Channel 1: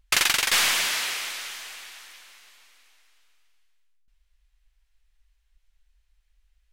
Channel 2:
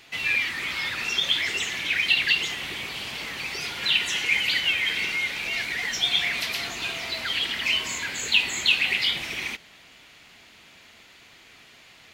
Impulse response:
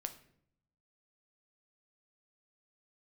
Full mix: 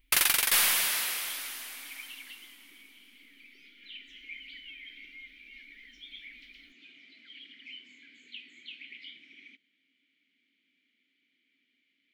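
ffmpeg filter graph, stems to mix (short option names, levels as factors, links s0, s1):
-filter_complex "[0:a]aexciter=amount=4.5:drive=3.4:freq=9400,volume=0.531[s0];[1:a]asplit=3[s1][s2][s3];[s1]bandpass=f=270:t=q:w=8,volume=1[s4];[s2]bandpass=f=2290:t=q:w=8,volume=0.501[s5];[s3]bandpass=f=3010:t=q:w=8,volume=0.355[s6];[s4][s5][s6]amix=inputs=3:normalize=0,highpass=160,volume=0.237[s7];[s0][s7]amix=inputs=2:normalize=0"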